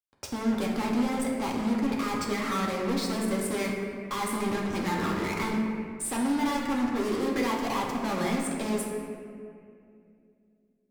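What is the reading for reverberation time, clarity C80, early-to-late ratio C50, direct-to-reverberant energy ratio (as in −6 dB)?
2.4 s, 3.0 dB, 1.5 dB, −3.0 dB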